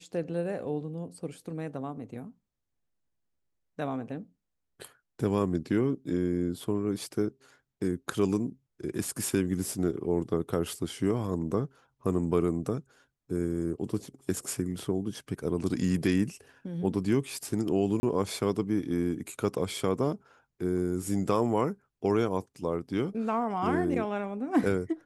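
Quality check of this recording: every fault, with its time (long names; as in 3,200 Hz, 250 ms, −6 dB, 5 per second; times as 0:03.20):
0:18.00–0:18.03: drop-out 30 ms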